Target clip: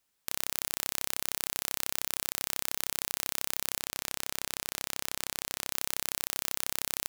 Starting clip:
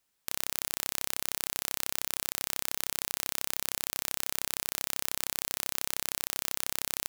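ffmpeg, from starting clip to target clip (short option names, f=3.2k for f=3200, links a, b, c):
-filter_complex "[0:a]asettb=1/sr,asplit=3[a][b][c];[a]atrim=end=3.804[d];[b]atrim=start=3.8:end=5.72,asetpts=PTS-STARTPTS,afade=t=in:d=0.004:c=qsin,afade=t=out:st=1.916:d=0.004:c=qsin,highshelf=f=10k:g=-6[e];[c]atrim=start=5.716[f];[d][e]acrossfade=d=0.004:c1=hsin:c2=qsin[g];[g][f]acrossfade=d=0.004:c1=qsin:c2=hsin"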